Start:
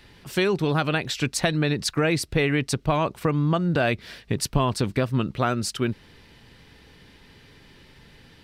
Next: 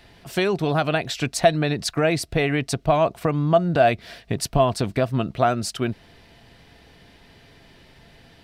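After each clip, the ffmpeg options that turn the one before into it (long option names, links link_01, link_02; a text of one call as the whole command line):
ffmpeg -i in.wav -af "equalizer=frequency=680:width_type=o:width=0.24:gain=13.5" out.wav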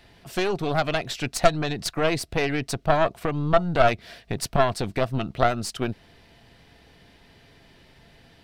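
ffmpeg -i in.wav -af "aeval=exprs='0.668*(cos(1*acos(clip(val(0)/0.668,-1,1)))-cos(1*PI/2))+0.188*(cos(4*acos(clip(val(0)/0.668,-1,1)))-cos(4*PI/2))':channel_layout=same,volume=-3dB" out.wav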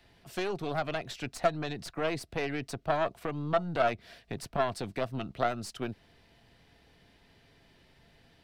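ffmpeg -i in.wav -filter_complex "[0:a]acrossover=split=140|850|2300[link_01][link_02][link_03][link_04];[link_01]asoftclip=type=tanh:threshold=-33dB[link_05];[link_04]alimiter=limit=-23.5dB:level=0:latency=1:release=220[link_06];[link_05][link_02][link_03][link_06]amix=inputs=4:normalize=0,volume=-8dB" out.wav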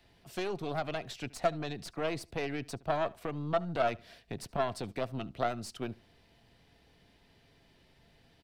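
ffmpeg -i in.wav -filter_complex "[0:a]equalizer=frequency=1600:width=1.5:gain=-2.5,asplit=2[link_01][link_02];[link_02]adelay=74,lowpass=frequency=4900:poles=1,volume=-22.5dB,asplit=2[link_03][link_04];[link_04]adelay=74,lowpass=frequency=4900:poles=1,volume=0.27[link_05];[link_01][link_03][link_05]amix=inputs=3:normalize=0,volume=-2dB" out.wav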